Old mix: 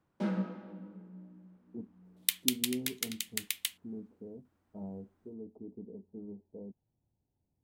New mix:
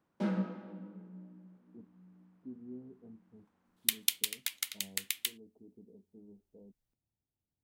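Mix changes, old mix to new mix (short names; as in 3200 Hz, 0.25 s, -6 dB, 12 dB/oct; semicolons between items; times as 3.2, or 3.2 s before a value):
speech -10.5 dB; second sound: entry +1.60 s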